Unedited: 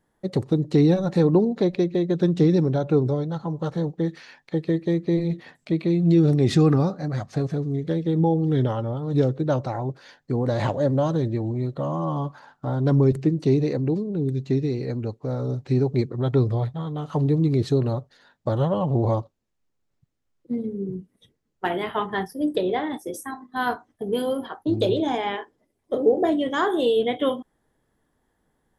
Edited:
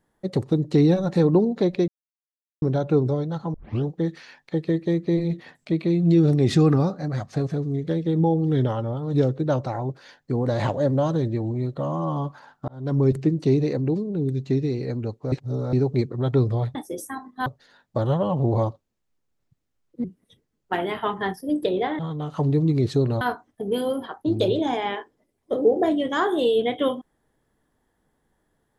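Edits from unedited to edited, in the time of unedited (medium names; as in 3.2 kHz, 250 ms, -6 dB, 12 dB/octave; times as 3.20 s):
1.88–2.62 s: mute
3.54 s: tape start 0.33 s
12.68–13.10 s: fade in
15.32–15.73 s: reverse
16.75–17.97 s: swap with 22.91–23.62 s
20.55–20.96 s: delete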